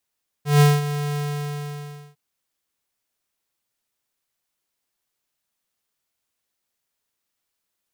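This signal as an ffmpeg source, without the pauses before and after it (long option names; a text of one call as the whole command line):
ffmpeg -f lavfi -i "aevalsrc='0.251*(2*lt(mod(146*t,1),0.5)-1)':duration=1.705:sample_rate=44100,afade=type=in:duration=0.156,afade=type=out:start_time=0.156:duration=0.204:silence=0.224,afade=type=out:start_time=0.71:duration=0.995" out.wav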